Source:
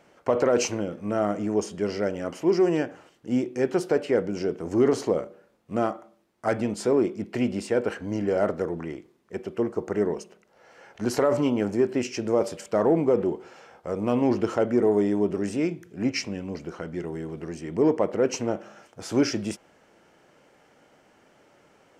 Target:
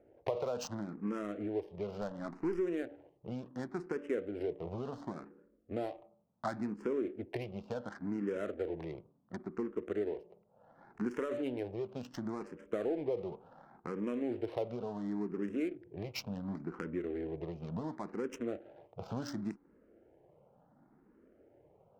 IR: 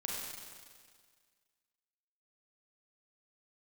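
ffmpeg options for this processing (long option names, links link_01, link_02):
-filter_complex "[0:a]bandreject=frequency=287.8:width_type=h:width=4,bandreject=frequency=575.6:width_type=h:width=4,bandreject=frequency=863.4:width_type=h:width=4,asplit=2[link_01][link_02];[link_02]aeval=exprs='sgn(val(0))*max(abs(val(0))-0.00944,0)':channel_layout=same,volume=-10.5dB[link_03];[link_01][link_03]amix=inputs=2:normalize=0,adynamicsmooth=sensitivity=4.5:basefreq=530,asettb=1/sr,asplit=3[link_04][link_05][link_06];[link_04]atrim=end=2.014[link_07];[link_05]atrim=start=2.01:end=2.59,asetpts=PTS-STARTPTS,afade=type=in:duration=0.004:curve=qsin,afade=type=out:start_time=0.576:duration=0.004:curve=qsin,aeval=exprs='0.335*(cos(1*acos(clip(val(0)/0.335,-1,1)))-cos(1*PI/2))+0.0266*(cos(6*acos(clip(val(0)/0.335,-1,1)))-cos(6*PI/2))':channel_layout=same[link_08];[link_06]atrim=start=2.586[link_09];[link_07][link_08]acrossfade=duration=0.004:curve1=hsin:curve2=qsin[link_10];[link_10][link_09]acrossfade=duration=0.004:curve1=qsin:curve2=hsin,acompressor=threshold=-34dB:ratio=4,asplit=2[link_11][link_12];[link_12]afreqshift=0.7[link_13];[link_11][link_13]amix=inputs=2:normalize=1,volume=1dB"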